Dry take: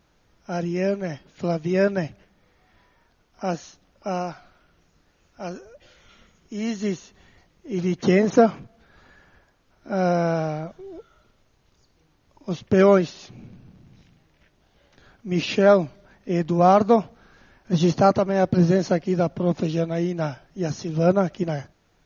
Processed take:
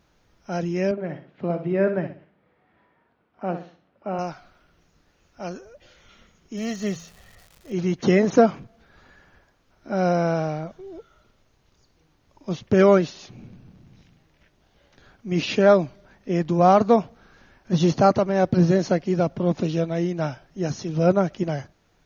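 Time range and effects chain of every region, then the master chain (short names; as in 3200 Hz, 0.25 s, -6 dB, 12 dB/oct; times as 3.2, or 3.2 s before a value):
0.91–4.19 HPF 140 Hz + air absorption 470 m + flutter echo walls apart 10.8 m, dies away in 0.39 s
6.56–7.72 comb 1.6 ms, depth 63% + de-hum 83.25 Hz, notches 3 + crackle 330/s -40 dBFS
whole clip: dry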